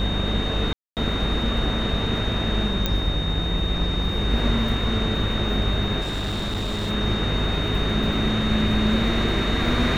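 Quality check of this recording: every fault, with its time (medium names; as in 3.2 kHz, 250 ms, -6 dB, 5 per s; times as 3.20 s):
buzz 50 Hz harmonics 39 -27 dBFS
whine 3.7 kHz -29 dBFS
0.73–0.97 s: dropout 238 ms
2.86 s: pop -8 dBFS
6.01–6.91 s: clipped -23 dBFS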